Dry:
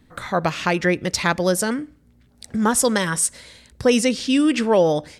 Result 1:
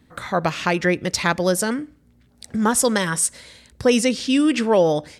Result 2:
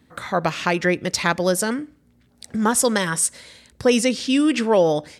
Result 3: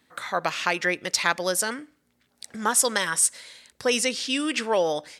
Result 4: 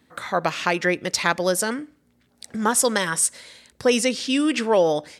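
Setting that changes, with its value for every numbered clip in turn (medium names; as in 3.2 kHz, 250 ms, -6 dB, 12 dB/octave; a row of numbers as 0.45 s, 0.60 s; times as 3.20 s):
high-pass, cutoff frequency: 41 Hz, 110 Hz, 1 kHz, 350 Hz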